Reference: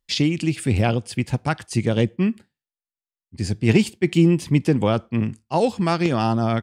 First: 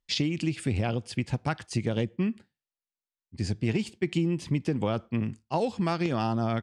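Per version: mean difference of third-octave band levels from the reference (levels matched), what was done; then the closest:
2.0 dB: low-pass filter 7,600 Hz 12 dB per octave
downward compressor, threshold −19 dBFS, peak gain reduction 9 dB
level −4 dB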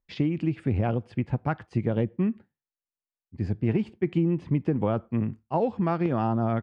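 5.5 dB: low-pass filter 1,500 Hz 12 dB per octave
downward compressor, threshold −17 dBFS, peak gain reduction 7 dB
level −3 dB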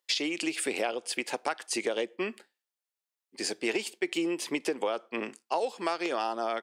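10.0 dB: high-pass filter 390 Hz 24 dB per octave
downward compressor 6 to 1, threshold −30 dBFS, peak gain reduction 14 dB
level +3 dB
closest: first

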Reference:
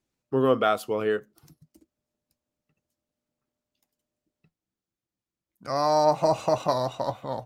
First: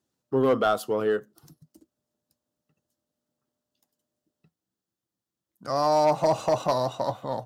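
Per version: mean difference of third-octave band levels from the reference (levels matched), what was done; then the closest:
1.5 dB: high-pass filter 91 Hz
in parallel at −4 dB: soft clipping −23.5 dBFS, distortion −8 dB
on the sum: parametric band 2,300 Hz −10 dB 0.39 octaves
hard clipping −12.5 dBFS, distortion −24 dB
level −2 dB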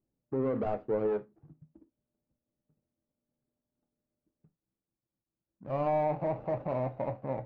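7.5 dB: running median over 41 samples
low-pass filter 1,200 Hz 12 dB per octave
brickwall limiter −23.5 dBFS, peak gain reduction 10.5 dB
reverb whose tail is shaped and stops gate 100 ms falling, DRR 10.5 dB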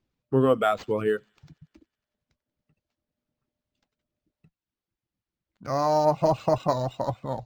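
3.5 dB: reverb reduction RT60 0.72 s
low-shelf EQ 190 Hz +9.5 dB
delay with a high-pass on its return 93 ms, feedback 72%, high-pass 4,100 Hz, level −20.5 dB
linearly interpolated sample-rate reduction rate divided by 4×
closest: first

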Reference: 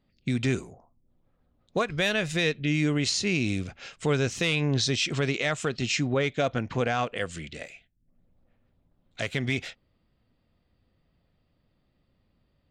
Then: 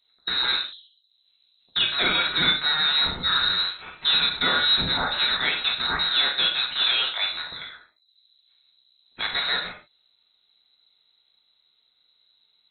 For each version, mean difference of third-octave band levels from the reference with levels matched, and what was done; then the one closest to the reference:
14.0 dB: loose part that buzzes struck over −33 dBFS, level −22 dBFS
reverb whose tail is shaped and stops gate 160 ms falling, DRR −0.5 dB
voice inversion scrambler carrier 4,000 Hz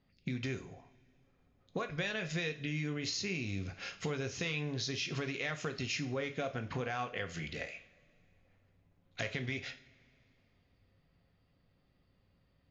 5.0 dB: downward compressor 6 to 1, threshold −33 dBFS, peak gain reduction 12 dB
Chebyshev low-pass with heavy ripple 6,800 Hz, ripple 3 dB
coupled-rooms reverb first 0.4 s, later 2.8 s, from −22 dB, DRR 6.5 dB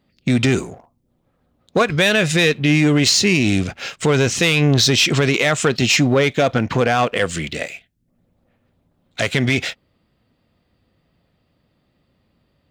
3.0 dB: leveller curve on the samples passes 1
high-pass filter 100 Hz 6 dB per octave
boost into a limiter +16.5 dB
level −6 dB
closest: third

